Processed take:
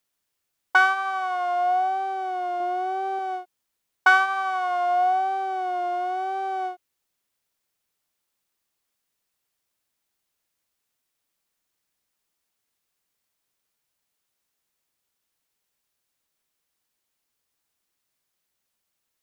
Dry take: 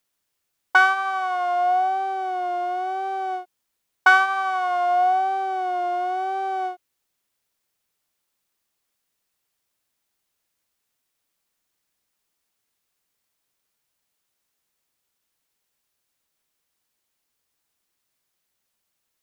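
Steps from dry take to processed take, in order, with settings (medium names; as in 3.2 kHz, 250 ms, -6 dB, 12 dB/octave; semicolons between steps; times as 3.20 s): 2.60–3.19 s: bass shelf 330 Hz +8.5 dB; trim -2 dB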